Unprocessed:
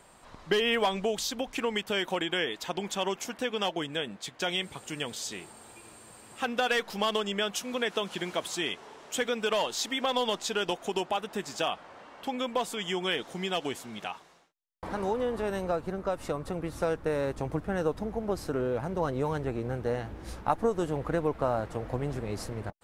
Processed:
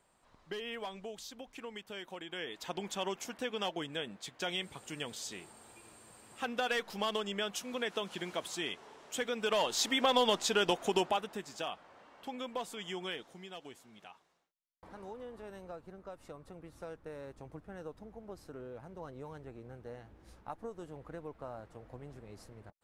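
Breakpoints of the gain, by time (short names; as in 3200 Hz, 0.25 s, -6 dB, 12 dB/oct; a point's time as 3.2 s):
2.22 s -15 dB
2.68 s -6 dB
9.3 s -6 dB
9.83 s +0.5 dB
11.04 s +0.5 dB
11.45 s -9 dB
13.04 s -9 dB
13.46 s -16.5 dB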